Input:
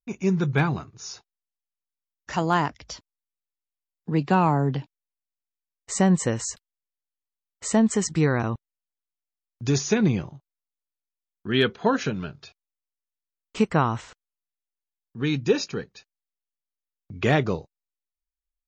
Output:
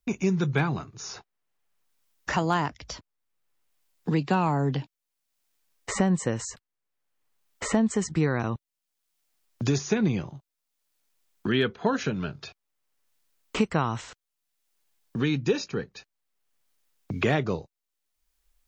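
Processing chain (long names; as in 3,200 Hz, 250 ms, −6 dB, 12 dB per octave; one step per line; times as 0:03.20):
multiband upward and downward compressor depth 70%
level −2 dB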